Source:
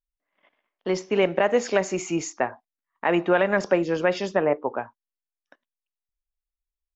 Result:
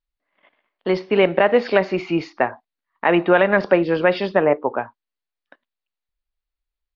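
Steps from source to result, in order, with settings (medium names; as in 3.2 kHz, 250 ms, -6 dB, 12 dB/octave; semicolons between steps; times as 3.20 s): elliptic low-pass 4.5 kHz, stop band 50 dB; trim +6 dB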